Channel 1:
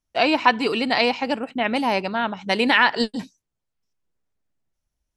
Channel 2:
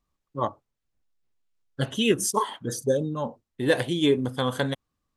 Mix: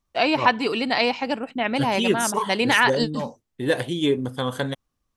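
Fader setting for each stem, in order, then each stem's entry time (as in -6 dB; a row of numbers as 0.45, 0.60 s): -1.5, 0.0 dB; 0.00, 0.00 s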